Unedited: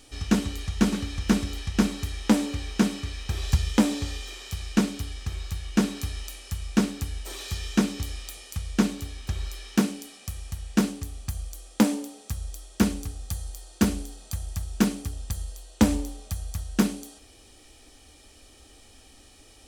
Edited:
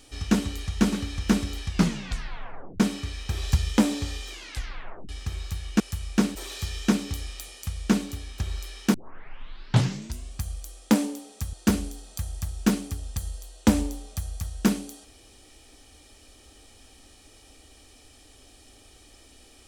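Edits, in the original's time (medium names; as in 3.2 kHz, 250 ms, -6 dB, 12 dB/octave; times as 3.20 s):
1.68 s: tape stop 1.12 s
4.31 s: tape stop 0.78 s
5.80–6.39 s: delete
6.94–7.24 s: delete
9.83 s: tape start 1.44 s
12.42–13.67 s: delete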